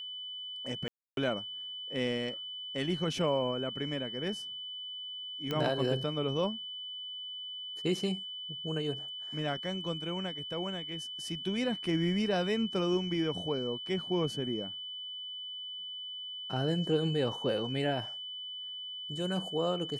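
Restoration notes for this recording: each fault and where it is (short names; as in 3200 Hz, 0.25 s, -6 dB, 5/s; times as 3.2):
tone 3000 Hz -39 dBFS
0.88–1.17 gap 0.292 s
5.51 pop -20 dBFS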